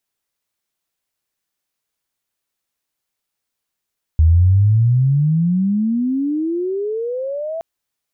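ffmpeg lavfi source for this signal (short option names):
-f lavfi -i "aevalsrc='pow(10,(-7.5-14.5*t/3.42)/20)*sin(2*PI*77*3.42/log(670/77)*(exp(log(670/77)*t/3.42)-1))':d=3.42:s=44100"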